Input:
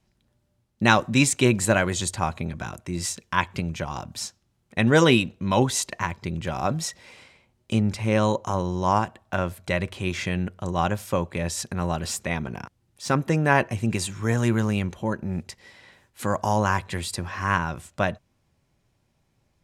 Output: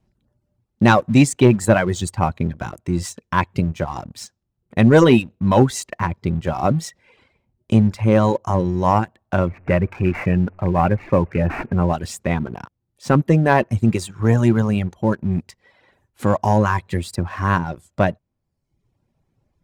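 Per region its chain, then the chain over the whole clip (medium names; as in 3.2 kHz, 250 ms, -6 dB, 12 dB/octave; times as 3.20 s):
9.47–11.93 s: jump at every zero crossing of -36 dBFS + careless resampling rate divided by 8×, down none, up filtered
whole clip: reverb removal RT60 0.83 s; tilt shelf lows +6 dB, about 1.3 kHz; waveshaping leveller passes 1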